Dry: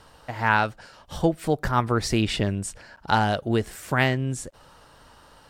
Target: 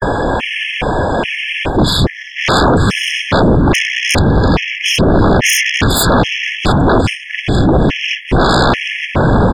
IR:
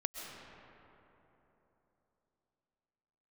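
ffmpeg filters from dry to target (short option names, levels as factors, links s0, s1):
-filter_complex "[0:a]areverse,acrossover=split=450|3000[s0][s1][s2];[s1]acompressor=threshold=0.0141:ratio=4[s3];[s0][s3][s2]amix=inputs=3:normalize=0,asplit=2[s4][s5];[1:a]atrim=start_sample=2205,asetrate=33957,aresample=44100[s6];[s5][s6]afir=irnorm=-1:irlink=0,volume=0.501[s7];[s4][s7]amix=inputs=2:normalize=0,acompressor=threshold=0.0316:ratio=2.5,highshelf=f=6200:t=q:w=3:g=-8.5,asetrate=25442,aresample=44100,equalizer=f=12000:w=1.4:g=5,bandreject=f=68.88:t=h:w=4,bandreject=f=137.76:t=h:w=4,bandreject=f=206.64:t=h:w=4,bandreject=f=275.52:t=h:w=4,bandreject=f=344.4:t=h:w=4,bandreject=f=413.28:t=h:w=4,bandreject=f=482.16:t=h:w=4,bandreject=f=551.04:t=h:w=4,bandreject=f=619.92:t=h:w=4,bandreject=f=688.8:t=h:w=4,bandreject=f=757.68:t=h:w=4,bandreject=f=826.56:t=h:w=4,bandreject=f=895.44:t=h:w=4,bandreject=f=964.32:t=h:w=4,bandreject=f=1033.2:t=h:w=4,bandreject=f=1102.08:t=h:w=4,bandreject=f=1170.96:t=h:w=4,bandreject=f=1239.84:t=h:w=4,afftfilt=real='hypot(re,im)*cos(2*PI*random(0))':imag='hypot(re,im)*sin(2*PI*random(1))':win_size=512:overlap=0.75,aeval=exprs='0.075*sin(PI/2*7.08*val(0)/0.075)':c=same,alimiter=level_in=39.8:limit=0.891:release=50:level=0:latency=1,afftfilt=real='re*gt(sin(2*PI*1.2*pts/sr)*(1-2*mod(floor(b*sr/1024/1700),2)),0)':imag='im*gt(sin(2*PI*1.2*pts/sr)*(1-2*mod(floor(b*sr/1024/1700),2)),0)':win_size=1024:overlap=0.75,volume=0.596"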